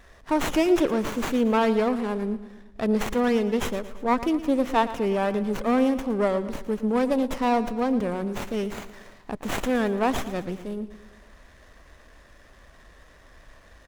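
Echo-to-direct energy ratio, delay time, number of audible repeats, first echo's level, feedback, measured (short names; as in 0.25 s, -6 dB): -13.0 dB, 0.114 s, 4, -14.5 dB, 54%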